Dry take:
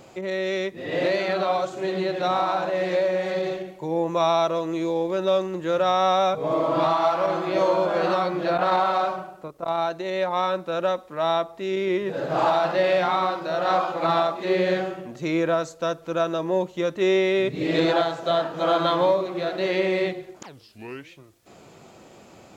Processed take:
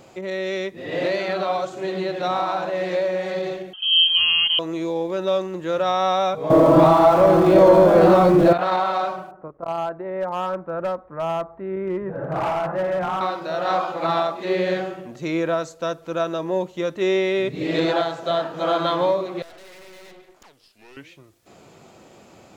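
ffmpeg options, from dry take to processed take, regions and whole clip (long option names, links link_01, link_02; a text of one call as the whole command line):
ffmpeg -i in.wav -filter_complex "[0:a]asettb=1/sr,asplit=3[link_01][link_02][link_03];[link_01]atrim=end=3.734[link_04];[link_02]atrim=start=3.73:end=4.59,asetpts=PTS-STARTPTS,afade=type=in:duration=0.004:curve=qsin,afade=type=out:start_time=0.856:duration=0.004:curve=qsin,asuperstop=centerf=1200:order=4:qfactor=2.5,equalizer=frequency=350:width=2.2:gain=12.5,lowpass=frequency=3000:width_type=q:width=0.5098,lowpass=frequency=3000:width_type=q:width=0.6013,lowpass=frequency=3000:width_type=q:width=0.9,lowpass=frequency=3000:width_type=q:width=2.563,afreqshift=-3500[link_05];[link_03]atrim=start=4.586[link_06];[link_04][link_05]acrossfade=duration=0.004:curve1=hsin:curve2=qsin[link_07];[link_07][link_06]acrossfade=duration=0.004:curve1=qsin:curve2=hsin,asettb=1/sr,asplit=3[link_08][link_09][link_10];[link_08]atrim=end=6.504[link_11];[link_09]atrim=start=6.5:end=8.53,asetpts=PTS-STARTPTS,afade=type=in:duration=0.004:curve=qsin,afade=type=out:start_time=2.026:duration=0.004:curve=qsin,aeval=exprs='val(0)+0.5*0.0335*sgn(val(0))':channel_layout=same,tiltshelf=frequency=830:gain=8,acontrast=51[link_12];[link_10]atrim=start=8.526[link_13];[link_11][link_12]acrossfade=duration=0.004:curve1=hsin:curve2=qsin[link_14];[link_14][link_13]acrossfade=duration=0.004:curve1=qsin:curve2=hsin,asettb=1/sr,asplit=3[link_15][link_16][link_17];[link_15]atrim=end=9.314[link_18];[link_16]atrim=start=9.31:end=13.21,asetpts=PTS-STARTPTS,afade=type=in:duration=0.004:curve=qsin,afade=type=out:start_time=3.896:duration=0.004:curve=qsin,lowpass=frequency=1600:width=0.5412,lowpass=frequency=1600:width=1.3066,asubboost=boost=4:cutoff=160,asoftclip=type=hard:threshold=-19.5dB[link_19];[link_17]atrim=start=13.206[link_20];[link_18][link_19]acrossfade=duration=0.004:curve1=hsin:curve2=qsin[link_21];[link_21][link_20]acrossfade=duration=0.004:curve1=qsin:curve2=hsin,asettb=1/sr,asplit=3[link_22][link_23][link_24];[link_22]atrim=end=19.424[link_25];[link_23]atrim=start=19.42:end=20.97,asetpts=PTS-STARTPTS,afade=type=in:duration=0.004:curve=qsin,afade=type=out:start_time=1.546:duration=0.004:curve=qsin,highpass=frequency=660:poles=1,aeval=exprs='(tanh(158*val(0)+0.65)-tanh(0.65))/158':channel_layout=same[link_26];[link_24]atrim=start=20.966[link_27];[link_25][link_26]acrossfade=duration=0.004:curve1=hsin:curve2=qsin[link_28];[link_28][link_27]acrossfade=duration=0.004:curve1=qsin:curve2=hsin" out.wav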